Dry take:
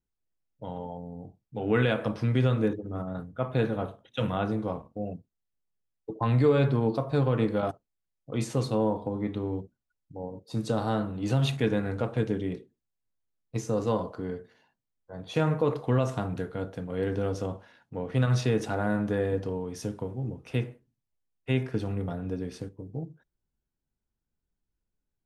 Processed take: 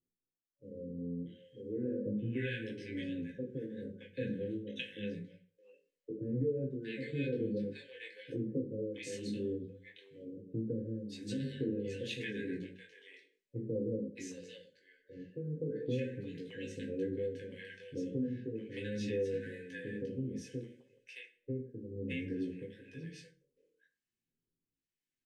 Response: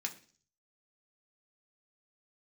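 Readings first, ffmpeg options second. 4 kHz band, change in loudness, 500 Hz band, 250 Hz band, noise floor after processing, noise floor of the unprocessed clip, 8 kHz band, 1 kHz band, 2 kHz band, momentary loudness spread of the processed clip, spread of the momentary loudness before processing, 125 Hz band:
−8.0 dB, −10.5 dB, −9.5 dB, −8.0 dB, below −85 dBFS, −85 dBFS, −9.0 dB, below −40 dB, −8.0 dB, 13 LU, 15 LU, −14.0 dB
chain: -filter_complex "[1:a]atrim=start_sample=2205,asetrate=52920,aresample=44100[link_01];[0:a][link_01]afir=irnorm=-1:irlink=0,flanger=delay=17:depth=6.1:speed=0.37,tremolo=f=0.94:d=0.78,afftfilt=real='re*(1-between(b*sr/4096,570,1500))':imag='im*(1-between(b*sr/4096,570,1500))':win_size=4096:overlap=0.75,highshelf=frequency=7100:gain=-11.5,acompressor=threshold=-45dB:ratio=2,acrossover=split=780[link_02][link_03];[link_03]adelay=620[link_04];[link_02][link_04]amix=inputs=2:normalize=0,volume=7.5dB"

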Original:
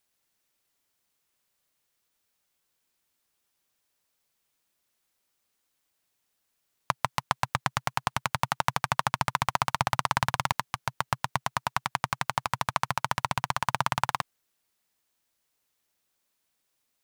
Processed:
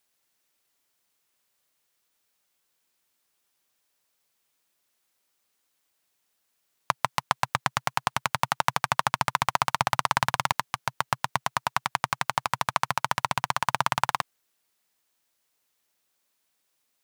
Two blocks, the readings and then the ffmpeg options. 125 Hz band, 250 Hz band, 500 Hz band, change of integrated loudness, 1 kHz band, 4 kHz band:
−2.0 dB, −1.0 dB, +2.0 dB, +2.0 dB, +2.5 dB, +2.5 dB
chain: -af "lowshelf=frequency=170:gain=-7,volume=2.5dB"

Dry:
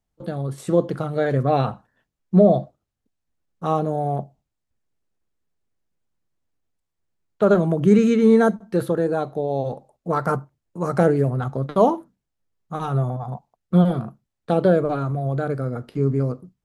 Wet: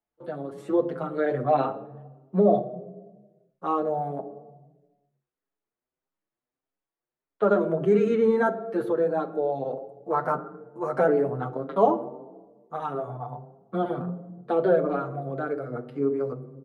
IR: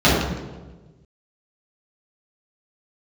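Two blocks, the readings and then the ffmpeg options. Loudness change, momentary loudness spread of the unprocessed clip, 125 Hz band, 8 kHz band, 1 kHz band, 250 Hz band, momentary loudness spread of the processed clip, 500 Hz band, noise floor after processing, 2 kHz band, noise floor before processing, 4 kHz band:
−5.0 dB, 14 LU, −12.5 dB, can't be measured, −2.0 dB, −8.0 dB, 16 LU, −3.0 dB, below −85 dBFS, −3.0 dB, −80 dBFS, below −10 dB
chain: -filter_complex "[0:a]acrossover=split=260 2700:gain=0.126 1 0.2[link_01][link_02][link_03];[link_01][link_02][link_03]amix=inputs=3:normalize=0,asplit=2[link_04][link_05];[1:a]atrim=start_sample=2205,asetrate=43659,aresample=44100[link_06];[link_05][link_06]afir=irnorm=-1:irlink=0,volume=-36.5dB[link_07];[link_04][link_07]amix=inputs=2:normalize=0,asplit=2[link_08][link_09];[link_09]adelay=6.7,afreqshift=1.6[link_10];[link_08][link_10]amix=inputs=2:normalize=1"

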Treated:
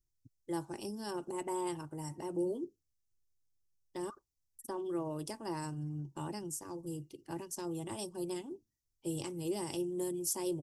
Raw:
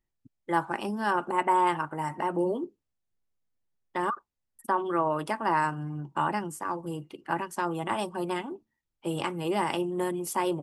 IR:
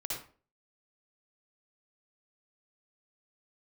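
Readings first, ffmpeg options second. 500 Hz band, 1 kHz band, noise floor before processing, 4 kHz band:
−7.5 dB, −18.0 dB, −83 dBFS, −7.5 dB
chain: -af "firequalizer=gain_entry='entry(120,0);entry(190,-12);entry(330,-6);entry(670,-16);entry(1300,-24);entry(5600,4);entry(8600,0)':delay=0.05:min_phase=1,volume=1dB"

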